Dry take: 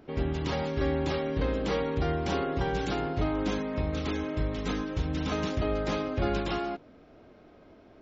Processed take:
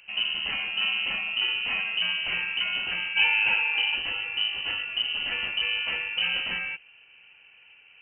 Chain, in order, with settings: 3.15–3.95 small resonant body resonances 450/670/1400/2100 Hz, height 17 dB -> 15 dB, ringing for 45 ms; inverted band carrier 3000 Hz; 1.03–1.79 notch 1600 Hz, Q 28

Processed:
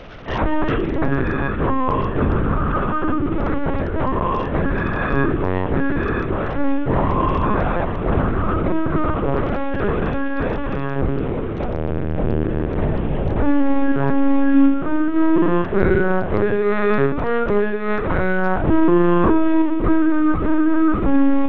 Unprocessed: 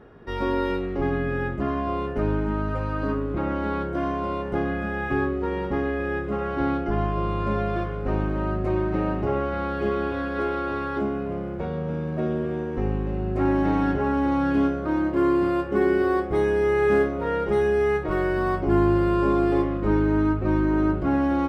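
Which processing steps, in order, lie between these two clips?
delta modulation 64 kbps, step -37.5 dBFS; reverb RT60 1.5 s, pre-delay 4 ms, DRR 7.5 dB; LPC vocoder at 8 kHz pitch kept; notches 60/120/180/240/300/360/420/480 Hz; gain +6.5 dB; SBC 64 kbps 48000 Hz

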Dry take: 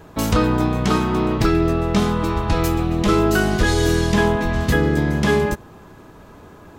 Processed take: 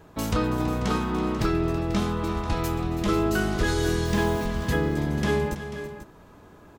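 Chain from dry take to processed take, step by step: 4.05–4.46 requantised 6-bit, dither none; tapped delay 0.328/0.49 s -13/-12.5 dB; gain -7.5 dB

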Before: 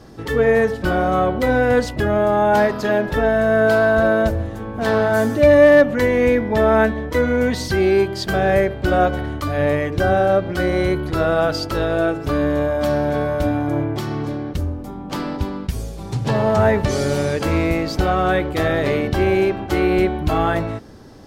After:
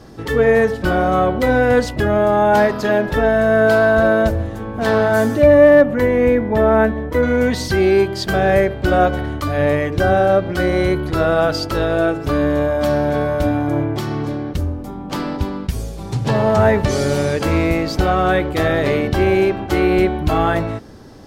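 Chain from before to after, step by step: 5.42–7.23 bell 5400 Hz -9 dB 2.5 oct; gain +2 dB

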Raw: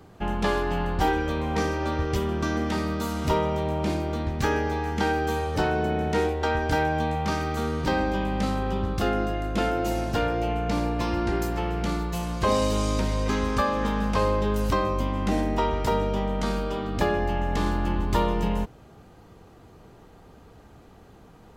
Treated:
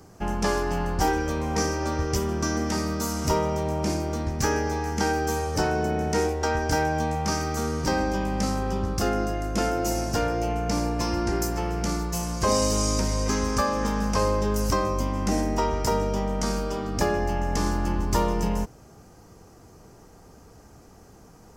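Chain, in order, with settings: resonant high shelf 4500 Hz +6.5 dB, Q 3

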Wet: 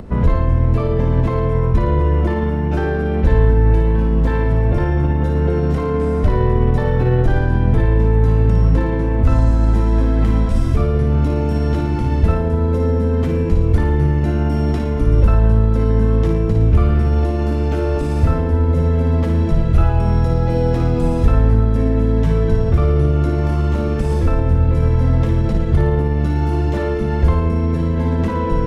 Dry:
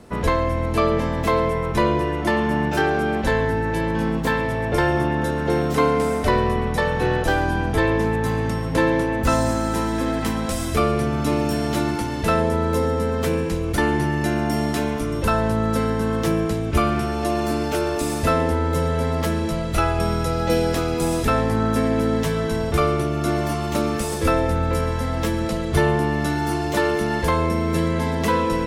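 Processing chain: limiter -16.5 dBFS, peak gain reduction 10 dB; RIAA curve playback; on a send: flutter echo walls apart 9.7 m, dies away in 0.59 s; on the sum: upward compressor, threshold -29 dBFS

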